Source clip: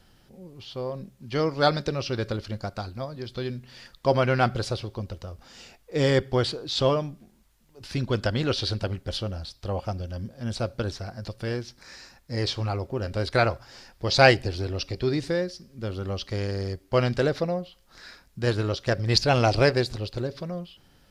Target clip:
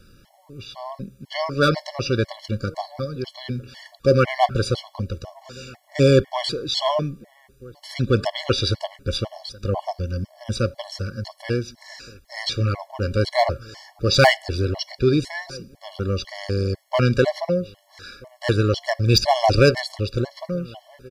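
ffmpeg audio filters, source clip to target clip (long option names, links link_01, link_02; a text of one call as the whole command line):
ffmpeg -i in.wav -filter_complex "[0:a]asplit=2[link_01][link_02];[link_02]aeval=exprs='0.168*(abs(mod(val(0)/0.168+3,4)-2)-1)':channel_layout=same,volume=-7dB[link_03];[link_01][link_03]amix=inputs=2:normalize=0,asplit=2[link_04][link_05];[link_05]adelay=1283,volume=-24dB,highshelf=frequency=4000:gain=-28.9[link_06];[link_04][link_06]amix=inputs=2:normalize=0,afftfilt=real='re*gt(sin(2*PI*2*pts/sr)*(1-2*mod(floor(b*sr/1024/570),2)),0)':imag='im*gt(sin(2*PI*2*pts/sr)*(1-2*mod(floor(b*sr/1024/570),2)),0)':win_size=1024:overlap=0.75,volume=4.5dB" out.wav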